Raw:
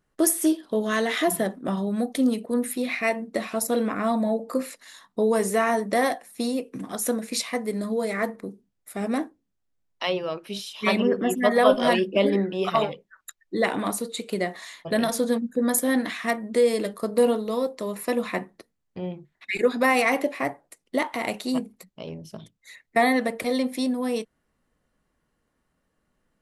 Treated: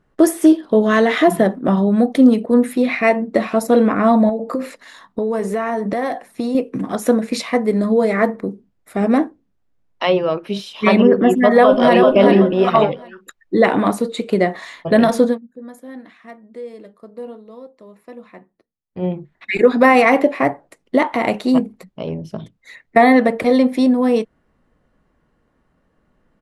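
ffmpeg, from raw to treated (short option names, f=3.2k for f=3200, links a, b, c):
-filter_complex "[0:a]asettb=1/sr,asplit=3[a][b][c];[a]atrim=end=4.294[d];[b]atrim=start=4.29:end=6.55,asetpts=PTS-STARTPTS,afade=t=in:d=0.004:c=qsin,afade=t=out:st=2.256:d=0.004:c=qsin,acompressor=threshold=-28dB:ratio=6:attack=3.2:release=140:knee=1:detection=peak[e];[c]atrim=start=6.546[f];[d][e]acrossfade=d=0.004:c1=hsin:c2=qsin[g];[g][f]acrossfade=d=0.004:c1=qsin:c2=hsin,asplit=2[h][i];[i]afade=t=in:st=11.57:d=0.01,afade=t=out:st=12.15:d=0.01,aecho=0:1:380|760|1140:0.562341|0.140585|0.0351463[j];[h][j]amix=inputs=2:normalize=0,asplit=3[k][l][m];[k]atrim=end=15.38,asetpts=PTS-STARTPTS,afade=t=out:st=15.24:d=0.14:silence=0.0707946[n];[l]atrim=start=15.38:end=18.91,asetpts=PTS-STARTPTS,volume=-23dB[o];[m]atrim=start=18.91,asetpts=PTS-STARTPTS,afade=t=in:d=0.14:silence=0.0707946[p];[n][o][p]concat=n=3:v=0:a=1,lowpass=f=1.5k:p=1,alimiter=level_in=12.5dB:limit=-1dB:release=50:level=0:latency=1,volume=-1dB"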